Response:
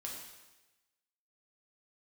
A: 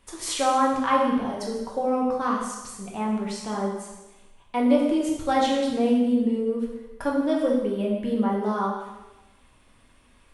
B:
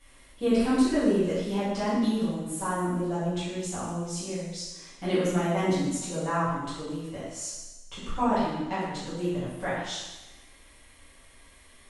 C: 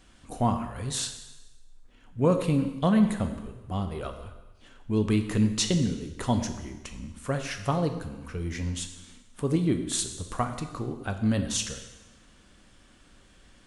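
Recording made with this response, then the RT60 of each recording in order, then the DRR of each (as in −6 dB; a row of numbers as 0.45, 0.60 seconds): A; 1.1, 1.1, 1.1 seconds; −2.5, −12.5, 6.0 decibels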